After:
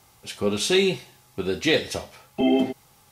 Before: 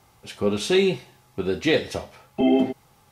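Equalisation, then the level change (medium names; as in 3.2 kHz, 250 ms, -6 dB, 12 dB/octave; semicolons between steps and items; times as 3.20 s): treble shelf 2.9 kHz +8 dB; -1.5 dB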